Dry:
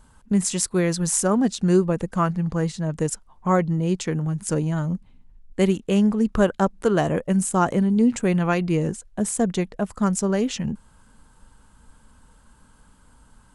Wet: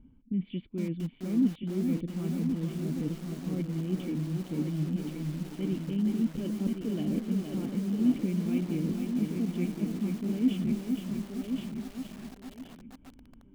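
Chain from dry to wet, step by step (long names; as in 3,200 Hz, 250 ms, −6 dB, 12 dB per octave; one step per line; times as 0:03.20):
low-pass that shuts in the quiet parts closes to 1,700 Hz, open at −17 dBFS
reversed playback
downward compressor 6 to 1, threshold −29 dBFS, peak gain reduction 15.5 dB
reversed playback
formant resonators in series i
on a send: feedback echo with a high-pass in the loop 1,074 ms, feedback 30%, high-pass 220 Hz, level −4.5 dB
on the sum: feedback echo at a low word length 466 ms, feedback 55%, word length 9 bits, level −5 dB
level +8.5 dB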